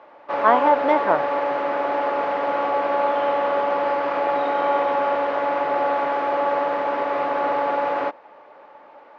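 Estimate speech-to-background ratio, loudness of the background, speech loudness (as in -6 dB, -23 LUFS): 2.0 dB, -22.5 LUFS, -20.5 LUFS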